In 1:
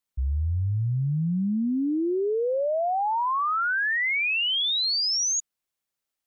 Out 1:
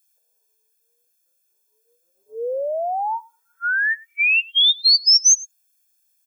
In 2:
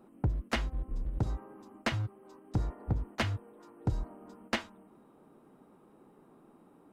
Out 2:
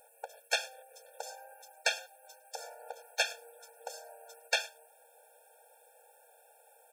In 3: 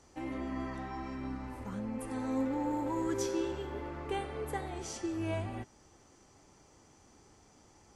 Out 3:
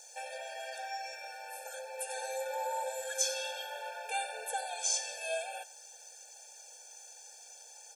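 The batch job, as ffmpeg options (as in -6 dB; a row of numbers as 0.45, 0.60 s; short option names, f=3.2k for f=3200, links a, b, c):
-filter_complex "[0:a]aecho=1:1:105:0.0668,asplit=2[a][b];[b]alimiter=level_in=5dB:limit=-24dB:level=0:latency=1:release=21,volume=-5dB,volume=-2dB[c];[a][c]amix=inputs=2:normalize=0,crystalizer=i=7:c=0,acrossover=split=8000[d][e];[e]acompressor=threshold=-40dB:ratio=4:attack=1:release=60[f];[d][f]amix=inputs=2:normalize=0,afftfilt=real='re*eq(mod(floor(b*sr/1024/460),2),1)':imag='im*eq(mod(floor(b*sr/1024/460),2),1)':win_size=1024:overlap=0.75,volume=-3dB"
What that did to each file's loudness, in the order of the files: +8.0, 0.0, +0.5 LU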